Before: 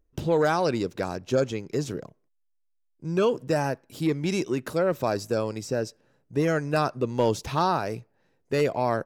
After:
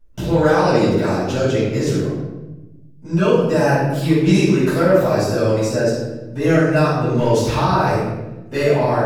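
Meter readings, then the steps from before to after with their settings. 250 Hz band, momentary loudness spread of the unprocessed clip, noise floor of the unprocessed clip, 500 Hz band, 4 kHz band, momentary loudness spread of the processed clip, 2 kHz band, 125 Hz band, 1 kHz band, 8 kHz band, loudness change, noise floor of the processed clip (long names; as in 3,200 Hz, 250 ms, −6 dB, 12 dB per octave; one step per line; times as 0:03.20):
+11.5 dB, 8 LU, −71 dBFS, +9.0 dB, +8.5 dB, 10 LU, +10.0 dB, +12.5 dB, +7.5 dB, +8.5 dB, +9.5 dB, −41 dBFS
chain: brickwall limiter −18 dBFS, peak gain reduction 5.5 dB
rectangular room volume 500 cubic metres, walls mixed, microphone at 7.2 metres
level −2.5 dB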